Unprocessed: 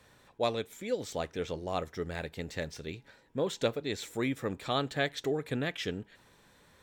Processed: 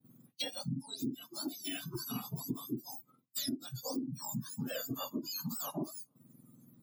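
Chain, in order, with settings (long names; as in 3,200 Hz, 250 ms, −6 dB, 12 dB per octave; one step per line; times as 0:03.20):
frequency axis turned over on the octave scale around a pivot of 1,400 Hz
graphic EQ with 10 bands 125 Hz +7 dB, 250 Hz +11 dB, 500 Hz −10 dB, 1,000 Hz −8 dB, 2,000 Hz −10 dB, 4,000 Hz −6 dB, 8,000 Hz −7 dB
downward expander −51 dBFS
downward compressor 16 to 1, threshold −48 dBFS, peak gain reduction 23.5 dB
noise reduction from a noise print of the clip's start 18 dB
level +14.5 dB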